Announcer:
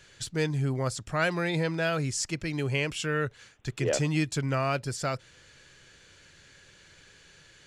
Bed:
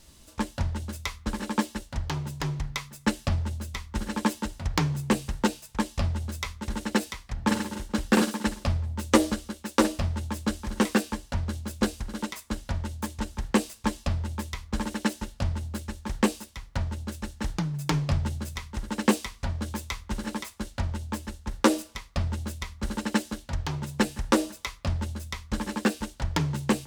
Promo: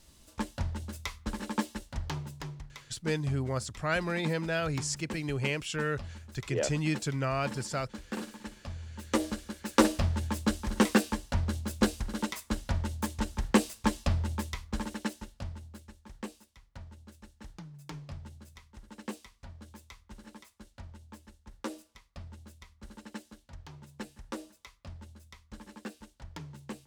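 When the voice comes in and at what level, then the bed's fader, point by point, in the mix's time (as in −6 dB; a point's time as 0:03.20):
2.70 s, −3.0 dB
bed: 0:02.14 −5 dB
0:02.76 −16 dB
0:08.60 −16 dB
0:09.81 −0.5 dB
0:14.33 −0.5 dB
0:16.08 −17.5 dB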